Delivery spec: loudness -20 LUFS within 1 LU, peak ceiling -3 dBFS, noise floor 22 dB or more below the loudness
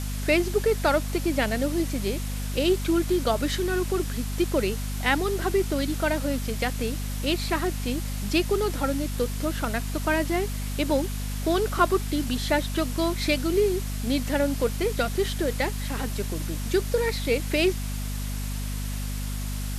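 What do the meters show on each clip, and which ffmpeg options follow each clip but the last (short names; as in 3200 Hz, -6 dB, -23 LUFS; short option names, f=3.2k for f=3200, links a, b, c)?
hum 50 Hz; harmonics up to 250 Hz; hum level -28 dBFS; noise floor -30 dBFS; noise floor target -49 dBFS; loudness -26.5 LUFS; peak -7.0 dBFS; loudness target -20.0 LUFS
-> -af "bandreject=f=50:t=h:w=6,bandreject=f=100:t=h:w=6,bandreject=f=150:t=h:w=6,bandreject=f=200:t=h:w=6,bandreject=f=250:t=h:w=6"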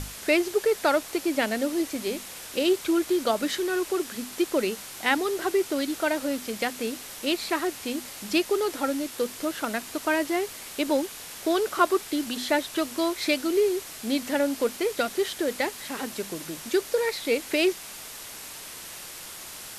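hum none; noise floor -41 dBFS; noise floor target -49 dBFS
-> -af "afftdn=nr=8:nf=-41"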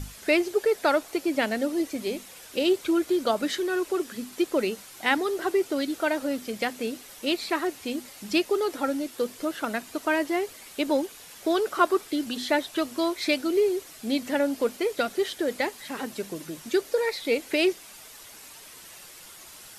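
noise floor -47 dBFS; noise floor target -49 dBFS
-> -af "afftdn=nr=6:nf=-47"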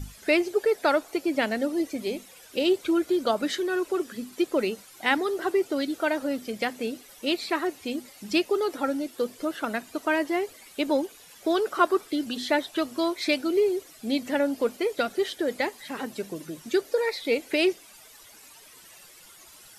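noise floor -51 dBFS; loudness -27.0 LUFS; peak -8.0 dBFS; loudness target -20.0 LUFS
-> -af "volume=7dB,alimiter=limit=-3dB:level=0:latency=1"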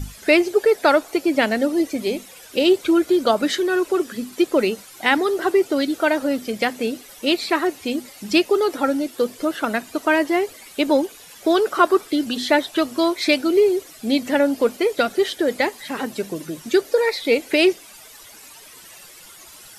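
loudness -20.5 LUFS; peak -3.0 dBFS; noise floor -44 dBFS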